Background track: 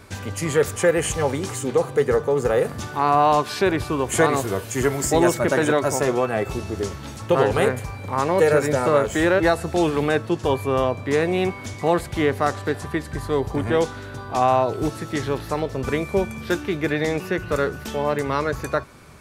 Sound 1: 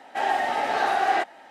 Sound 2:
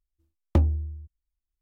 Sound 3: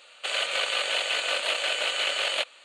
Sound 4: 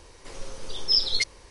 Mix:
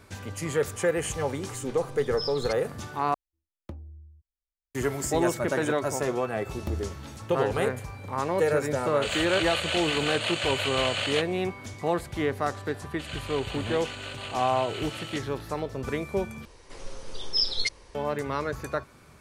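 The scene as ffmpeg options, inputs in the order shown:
-filter_complex "[4:a]asplit=2[a][b];[2:a]asplit=2[c][d];[3:a]asplit=2[e][f];[0:a]volume=-7dB[g];[c]acrossover=split=280|760[h][i][j];[h]acompressor=threshold=-27dB:ratio=4[k];[i]acompressor=threshold=-34dB:ratio=4[l];[j]acompressor=threshold=-40dB:ratio=4[m];[k][l][m]amix=inputs=3:normalize=0[n];[d]aemphasis=mode=production:type=75fm[o];[b]highshelf=f=4.3k:g=-3.5[p];[g]asplit=3[q][r][s];[q]atrim=end=3.144[t];[n]atrim=end=1.61,asetpts=PTS-STARTPTS,volume=-12.5dB[u];[r]atrim=start=4.746:end=16.454[v];[p]atrim=end=1.5,asetpts=PTS-STARTPTS,volume=-1.5dB[w];[s]atrim=start=17.946[x];[a]atrim=end=1.5,asetpts=PTS-STARTPTS,volume=-13.5dB,afade=t=in:d=0.004:c=hsin,afade=t=out:st=1.496:d=0.004:c=hsin,adelay=1290[y];[o]atrim=end=1.61,asetpts=PTS-STARTPTS,volume=-10.5dB,afade=t=in:d=0.004:c=hsin,afade=t=out:st=1.606:d=0.004:c=hsin,adelay=6120[z];[e]atrim=end=2.64,asetpts=PTS-STARTPTS,volume=-2.5dB,afade=t=in:d=0.004:c=hsin,afade=t=out:st=2.636:d=0.004:c=hsin,adelay=8780[aa];[f]atrim=end=2.64,asetpts=PTS-STARTPTS,volume=-12.5dB,afade=t=in:d=0.004:c=hsin,afade=t=out:st=2.636:d=0.004:c=hsin,adelay=12750[ab];[t][u]acrossfade=d=0.004:c1=hsin:c2=hsin[ac];[ac][v]acrossfade=d=0.004:c1=hsin:c2=hsin[ad];[ad][w]acrossfade=d=0.004:c1=hsin:c2=hsin[ae];[ae][x]acrossfade=d=0.004:c1=hsin:c2=hsin[af];[af][y][z][aa][ab]amix=inputs=5:normalize=0"

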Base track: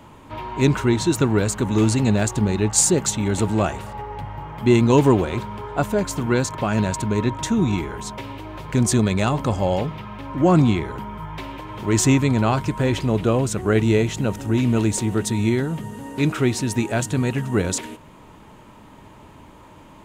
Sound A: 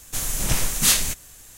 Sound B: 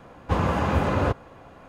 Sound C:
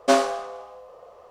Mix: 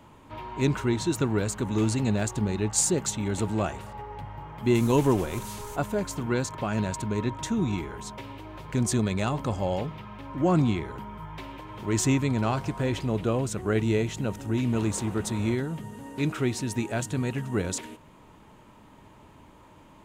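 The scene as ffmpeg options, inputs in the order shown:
-filter_complex "[0:a]volume=-7dB[a];[1:a]acompressor=threshold=-24dB:ratio=6:attack=3.2:release=140:knee=1:detection=peak[b];[3:a]acompressor=threshold=-31dB:ratio=6:attack=3.2:release=140:knee=1:detection=peak[c];[2:a]alimiter=limit=-15.5dB:level=0:latency=1:release=71[d];[b]atrim=end=1.57,asetpts=PTS-STARTPTS,volume=-15dB,afade=t=in:d=0.05,afade=t=out:st=1.52:d=0.05,adelay=4620[e];[c]atrim=end=1.3,asetpts=PTS-STARTPTS,volume=-12dB,afade=t=in:d=0.004:c=hsin,afade=t=out:st=1.296:d=0.004:c=hsin,adelay=12350[f];[d]atrim=end=1.68,asetpts=PTS-STARTPTS,volume=-17dB,afade=t=in:d=0.004:c=hsin,afade=t=out:st=1.676:d=0.004:c=hsin,adelay=14430[g];[a][e][f][g]amix=inputs=4:normalize=0"

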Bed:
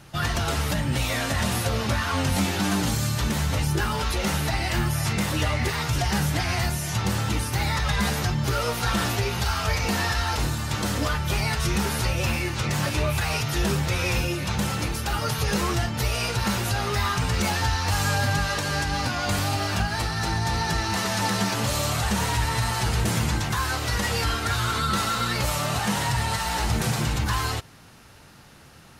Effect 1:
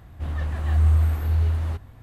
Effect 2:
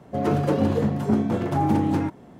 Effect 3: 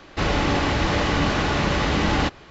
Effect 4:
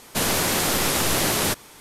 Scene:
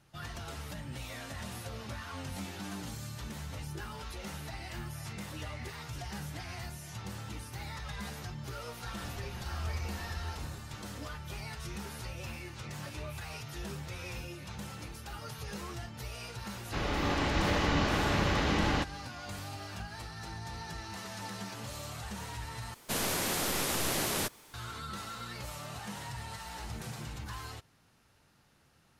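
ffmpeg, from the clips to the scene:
-filter_complex "[0:a]volume=-17dB[a];[1:a]aecho=1:1:5.5:0.67[b];[3:a]dynaudnorm=f=220:g=5:m=5.5dB[c];[4:a]acrusher=bits=8:mix=0:aa=0.000001[d];[a]asplit=2[e][f];[e]atrim=end=22.744[g];[d]atrim=end=1.8,asetpts=PTS-STARTPTS,volume=-10dB[h];[f]atrim=start=24.536[i];[b]atrim=end=2.02,asetpts=PTS-STARTPTS,volume=-13.5dB,afade=t=in:d=0.004:c=hsin,afade=t=out:st=2.016:d=0.004:c=hsin,adelay=388962S[j];[c]atrim=end=2.5,asetpts=PTS-STARTPTS,volume=-12.5dB,afade=t=in:d=0.004:c=hsin,afade=t=out:st=2.496:d=0.004:c=hsin,adelay=16550[k];[g][h]acrossfade=d=0.004:c1=hsin:c2=hsin[l];[l][i]acrossfade=d=0.004:c1=hsin:c2=hsin[m];[m][j][k]amix=inputs=3:normalize=0"

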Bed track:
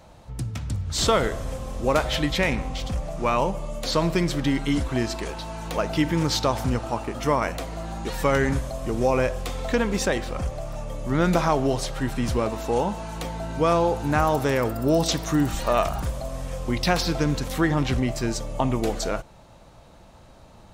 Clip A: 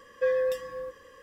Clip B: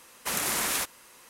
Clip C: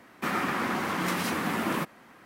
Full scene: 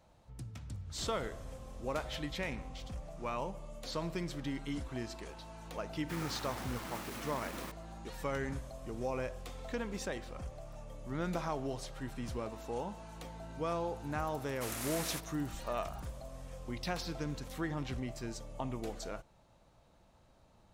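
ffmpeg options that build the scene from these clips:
-filter_complex "[0:a]volume=-15.5dB[a];[3:a]acrusher=bits=4:mix=0:aa=0.000001,atrim=end=2.25,asetpts=PTS-STARTPTS,volume=-17dB,afade=t=in:d=0.004:c=hsin,afade=t=out:st=2.246:d=0.004:c=hsin,adelay=5870[b];[2:a]atrim=end=1.29,asetpts=PTS-STARTPTS,volume=-12.5dB,afade=t=in:d=0.004:c=hsin,afade=t=out:st=1.286:d=0.004:c=hsin,adelay=14350[c];[a][b][c]amix=inputs=3:normalize=0"

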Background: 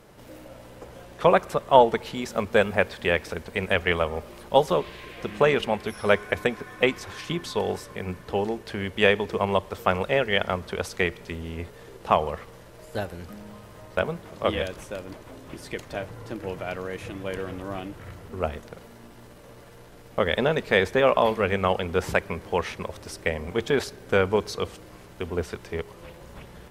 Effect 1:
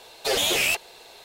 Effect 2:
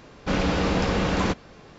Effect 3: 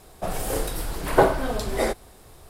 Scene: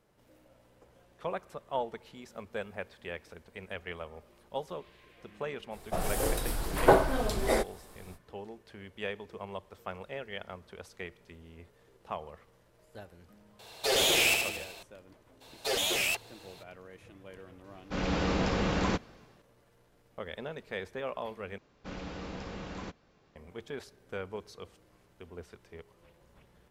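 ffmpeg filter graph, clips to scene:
-filter_complex "[1:a]asplit=2[a][b];[2:a]asplit=2[c][d];[0:a]volume=-17.5dB[e];[a]aecho=1:1:76|152|228|304|380|456|532|608:0.668|0.374|0.21|0.117|0.0657|0.0368|0.0206|0.0115[f];[c]dynaudnorm=f=100:g=7:m=10.5dB[g];[e]asplit=2[h][i];[h]atrim=end=21.584[j];[d]atrim=end=1.78,asetpts=PTS-STARTPTS,volume=-18dB[k];[i]atrim=start=23.356[l];[3:a]atrim=end=2.49,asetpts=PTS-STARTPTS,volume=-3.5dB,afade=t=in:d=0.05,afade=t=out:st=2.44:d=0.05,adelay=5700[m];[f]atrim=end=1.24,asetpts=PTS-STARTPTS,volume=-4.5dB,afade=t=in:d=0.004:c=hsin,afade=t=out:st=1.236:d=0.004:c=hsin,adelay=13590[n];[b]atrim=end=1.24,asetpts=PTS-STARTPTS,volume=-7dB,afade=t=in:d=0.02,afade=t=out:st=1.22:d=0.02,adelay=679140S[o];[g]atrim=end=1.78,asetpts=PTS-STARTPTS,volume=-14.5dB,afade=t=in:d=0.004:c=hsin,afade=t=out:st=1.776:d=0.004:c=hsin,adelay=777924S[p];[j][k]acrossfade=d=0.004:c1=hsin:c2=hsin[q];[q][l]acrossfade=d=0.004:c1=hsin:c2=hsin[r];[r][m][n][o][p]amix=inputs=5:normalize=0"

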